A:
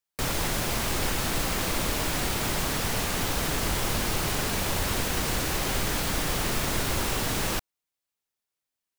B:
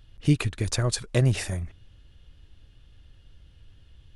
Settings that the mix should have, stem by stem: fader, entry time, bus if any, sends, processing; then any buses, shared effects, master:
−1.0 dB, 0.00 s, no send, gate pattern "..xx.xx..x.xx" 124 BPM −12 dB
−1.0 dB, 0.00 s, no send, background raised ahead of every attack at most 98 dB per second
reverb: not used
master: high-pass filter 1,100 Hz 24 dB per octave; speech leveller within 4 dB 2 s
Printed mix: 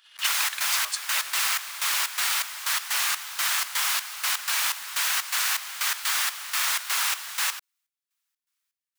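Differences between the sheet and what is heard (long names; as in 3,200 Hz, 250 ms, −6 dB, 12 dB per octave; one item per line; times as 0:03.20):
stem A −1.0 dB → +6.5 dB
master: missing speech leveller within 4 dB 2 s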